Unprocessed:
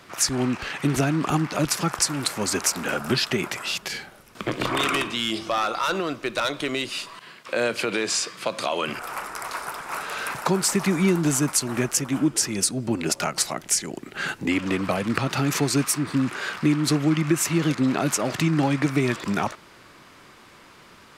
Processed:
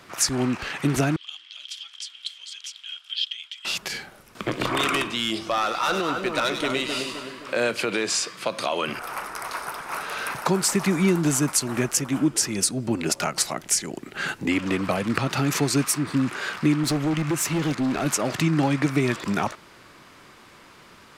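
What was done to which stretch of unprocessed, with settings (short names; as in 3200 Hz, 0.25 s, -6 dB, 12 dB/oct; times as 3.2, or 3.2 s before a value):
1.16–3.65 ladder band-pass 3300 Hz, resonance 90%
5.56–7.71 split-band echo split 1700 Hz, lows 0.261 s, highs 99 ms, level -5 dB
8.46–10.46 notch 7400 Hz, Q 7.8
16.83–18.06 hard clip -20 dBFS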